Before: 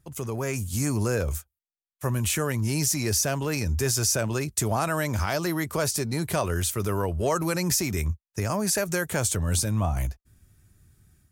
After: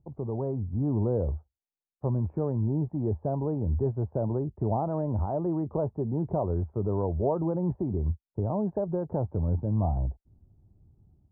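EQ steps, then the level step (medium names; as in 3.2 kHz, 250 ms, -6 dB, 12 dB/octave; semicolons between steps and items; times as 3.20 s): elliptic low-pass 880 Hz, stop band 80 dB; distance through air 190 m; 0.0 dB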